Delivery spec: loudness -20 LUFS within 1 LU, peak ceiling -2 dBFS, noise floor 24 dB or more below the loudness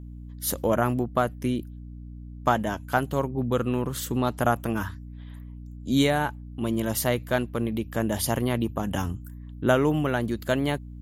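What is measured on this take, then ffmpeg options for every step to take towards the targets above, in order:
hum 60 Hz; harmonics up to 300 Hz; hum level -38 dBFS; loudness -26.5 LUFS; peak -6.5 dBFS; loudness target -20.0 LUFS
-> -af "bandreject=f=60:t=h:w=6,bandreject=f=120:t=h:w=6,bandreject=f=180:t=h:w=6,bandreject=f=240:t=h:w=6,bandreject=f=300:t=h:w=6"
-af "volume=6.5dB,alimiter=limit=-2dB:level=0:latency=1"

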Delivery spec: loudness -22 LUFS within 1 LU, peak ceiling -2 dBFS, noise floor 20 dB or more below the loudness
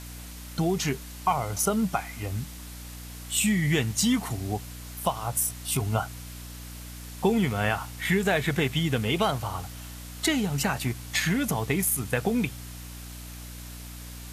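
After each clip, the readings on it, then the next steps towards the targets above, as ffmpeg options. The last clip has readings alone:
hum 60 Hz; harmonics up to 300 Hz; hum level -39 dBFS; noise floor -41 dBFS; noise floor target -47 dBFS; loudness -27.0 LUFS; peak -10.0 dBFS; loudness target -22.0 LUFS
-> -af "bandreject=f=60:t=h:w=6,bandreject=f=120:t=h:w=6,bandreject=f=180:t=h:w=6,bandreject=f=240:t=h:w=6,bandreject=f=300:t=h:w=6"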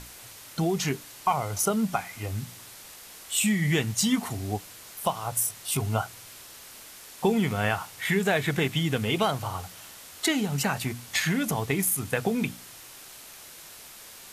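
hum none; noise floor -47 dBFS; noise floor target -48 dBFS
-> -af "afftdn=nr=6:nf=-47"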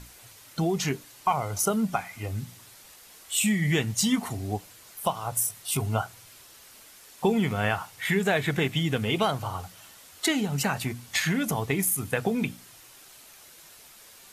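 noise floor -51 dBFS; loudness -27.5 LUFS; peak -10.5 dBFS; loudness target -22.0 LUFS
-> -af "volume=5.5dB"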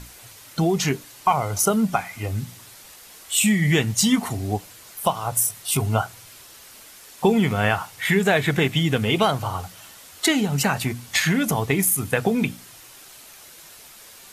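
loudness -22.0 LUFS; peak -5.0 dBFS; noise floor -46 dBFS

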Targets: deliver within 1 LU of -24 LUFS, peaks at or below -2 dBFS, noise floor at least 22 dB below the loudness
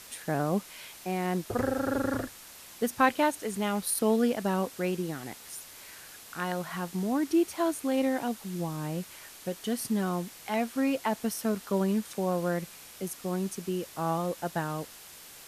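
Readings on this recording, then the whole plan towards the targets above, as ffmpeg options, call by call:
noise floor -49 dBFS; noise floor target -53 dBFS; loudness -30.5 LUFS; peak -10.0 dBFS; loudness target -24.0 LUFS
-> -af "afftdn=nr=6:nf=-49"
-af "volume=6.5dB"

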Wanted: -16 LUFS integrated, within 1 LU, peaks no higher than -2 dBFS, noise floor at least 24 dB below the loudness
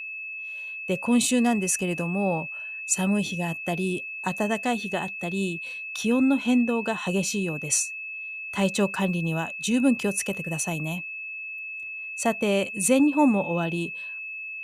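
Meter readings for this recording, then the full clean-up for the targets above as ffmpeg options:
steady tone 2600 Hz; tone level -33 dBFS; loudness -26.0 LUFS; peak -8.5 dBFS; loudness target -16.0 LUFS
-> -af "bandreject=f=2.6k:w=30"
-af "volume=10dB,alimiter=limit=-2dB:level=0:latency=1"

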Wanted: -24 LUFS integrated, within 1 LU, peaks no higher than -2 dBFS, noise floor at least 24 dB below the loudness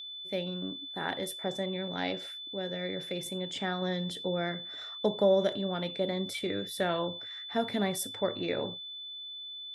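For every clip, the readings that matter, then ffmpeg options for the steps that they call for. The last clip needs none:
steady tone 3500 Hz; tone level -40 dBFS; loudness -33.0 LUFS; peak -14.0 dBFS; loudness target -24.0 LUFS
-> -af "bandreject=f=3.5k:w=30"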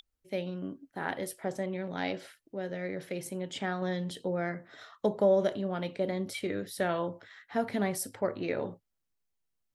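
steady tone none; loudness -33.5 LUFS; peak -14.0 dBFS; loudness target -24.0 LUFS
-> -af "volume=9.5dB"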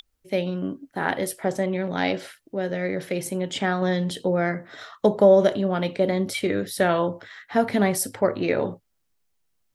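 loudness -24.0 LUFS; peak -4.5 dBFS; noise floor -72 dBFS

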